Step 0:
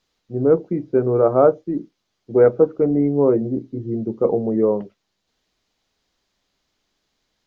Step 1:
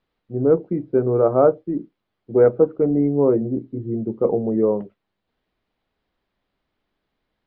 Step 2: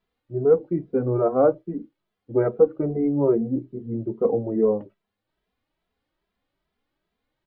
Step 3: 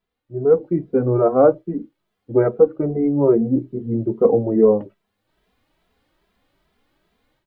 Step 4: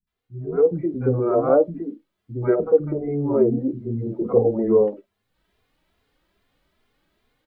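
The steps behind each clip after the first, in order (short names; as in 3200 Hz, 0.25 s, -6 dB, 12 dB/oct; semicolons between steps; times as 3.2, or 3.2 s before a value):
air absorption 390 m
endless flanger 2.6 ms +2.4 Hz
AGC gain up to 14.5 dB; gain -2 dB
three bands offset in time lows, highs, mids 70/120 ms, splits 240/790 Hz; gain -1 dB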